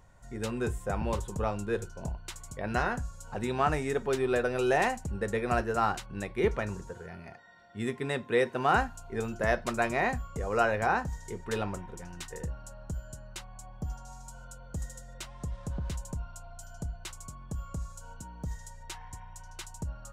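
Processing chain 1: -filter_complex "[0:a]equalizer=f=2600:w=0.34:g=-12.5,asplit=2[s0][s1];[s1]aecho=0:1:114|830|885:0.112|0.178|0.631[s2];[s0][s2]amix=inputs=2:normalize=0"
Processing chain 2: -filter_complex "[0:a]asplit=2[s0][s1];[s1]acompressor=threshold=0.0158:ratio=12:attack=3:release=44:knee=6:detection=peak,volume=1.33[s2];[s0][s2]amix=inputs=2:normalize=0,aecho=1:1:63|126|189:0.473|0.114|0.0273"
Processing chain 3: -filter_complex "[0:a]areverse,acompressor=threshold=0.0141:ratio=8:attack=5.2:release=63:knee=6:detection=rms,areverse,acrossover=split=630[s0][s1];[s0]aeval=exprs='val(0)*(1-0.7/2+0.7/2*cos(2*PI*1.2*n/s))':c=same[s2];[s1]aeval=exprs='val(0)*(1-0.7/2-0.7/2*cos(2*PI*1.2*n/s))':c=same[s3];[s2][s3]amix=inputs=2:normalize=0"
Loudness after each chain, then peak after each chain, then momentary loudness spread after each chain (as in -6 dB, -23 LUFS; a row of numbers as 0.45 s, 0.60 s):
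-35.0 LUFS, -29.0 LUFS, -46.5 LUFS; -16.5 dBFS, -10.5 dBFS, -29.5 dBFS; 13 LU, 13 LU, 8 LU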